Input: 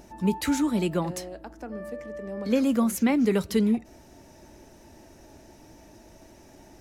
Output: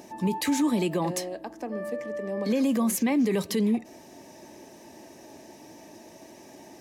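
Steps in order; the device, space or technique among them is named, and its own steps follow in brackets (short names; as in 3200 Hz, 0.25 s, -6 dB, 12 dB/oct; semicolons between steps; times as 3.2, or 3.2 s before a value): PA system with an anti-feedback notch (HPF 190 Hz 12 dB/oct; Butterworth band-stop 1400 Hz, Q 5.5; limiter -22 dBFS, peak gain reduction 9.5 dB); gain +4.5 dB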